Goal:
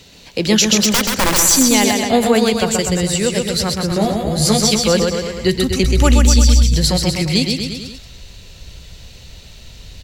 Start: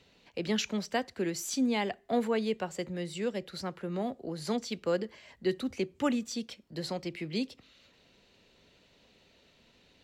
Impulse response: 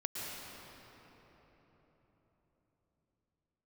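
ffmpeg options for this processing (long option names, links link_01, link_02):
-filter_complex "[0:a]bass=frequency=250:gain=5,treble=frequency=4000:gain=13,asettb=1/sr,asplit=3[link_01][link_02][link_03];[link_01]atrim=end=0.844[link_04];[link_02]atrim=start=0.84:end=1.39,asetpts=PTS-STARTPTS,afade=type=in:duration=0.004:curve=qsin,afade=type=out:start_time=0.546:duration=0.004:curve=qsin,aeval=exprs='(mod(16.8*val(0)+1,2)-1)/16.8':channel_layout=same[link_05];[link_03]atrim=start=1.386[link_06];[link_04][link_05]acrossfade=duration=0.004:curve1=hsin:curve2=qsin[link_07];[link_07][link_06]acrossfade=duration=0.004:curve1=qsin:curve2=hsin,asettb=1/sr,asplit=3[link_08][link_09][link_10];[link_08]atrim=end=3.904[link_11];[link_09]atrim=start=3.9:end=4.78,asetpts=PTS-STARTPTS,afade=type=in:duration=0.004:curve=qsin,afade=type=out:start_time=0.876:duration=0.004:curve=qsin,asplit=2[link_12][link_13];[link_13]adelay=14,volume=-3dB[link_14];[link_12][link_14]amix=inputs=2:normalize=0,atrim=end_sample=38808[link_15];[link_10]atrim=start=4.776[link_16];[link_11][link_15]acrossfade=duration=0.004:curve1=hsin:curve2=qsin[link_17];[link_17][link_16]acrossfade=duration=0.004:curve1=qsin:curve2=hsin,asettb=1/sr,asplit=3[link_18][link_19][link_20];[link_18]atrim=end=5.844[link_21];[link_19]atrim=start=5.84:end=6.63,asetpts=PTS-STARTPTS,afade=type=in:duration=0.004:curve=qsin,afade=type=out:start_time=0.786:duration=0.004:curve=qsin,aeval=exprs='val(0)+0.00891*(sin(2*PI*60*n/s)+sin(2*PI*2*60*n/s)/2+sin(2*PI*3*60*n/s)/3+sin(2*PI*4*60*n/s)/4+sin(2*PI*5*60*n/s)/5)':channel_layout=same[link_22];[link_20]atrim=start=6.626[link_23];[link_21][link_22]acrossfade=duration=0.004:curve1=hsin:curve2=qsin[link_24];[link_24][link_23]acrossfade=duration=0.004:curve1=qsin:curve2=hsin,asplit=2[link_25][link_26];[link_26]aecho=0:1:130|247|352.3|447.1|532.4:0.631|0.398|0.251|0.158|0.1[link_27];[link_25][link_27]amix=inputs=2:normalize=0,asubboost=boost=10:cutoff=81,alimiter=level_in=15.5dB:limit=-1dB:release=50:level=0:latency=1,volume=-1dB"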